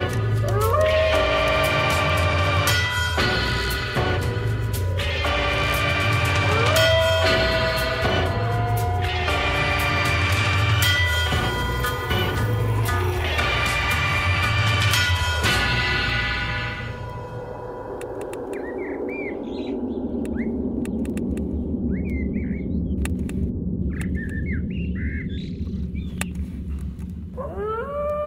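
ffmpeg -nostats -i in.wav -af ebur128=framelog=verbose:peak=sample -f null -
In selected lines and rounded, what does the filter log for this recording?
Integrated loudness:
  I:         -22.1 LUFS
  Threshold: -32.3 LUFS
Loudness range:
  LRA:         9.3 LU
  Threshold: -42.3 LUFS
  LRA low:   -28.8 LUFS
  LRA high:  -19.6 LUFS
Sample peak:
  Peak:       -5.3 dBFS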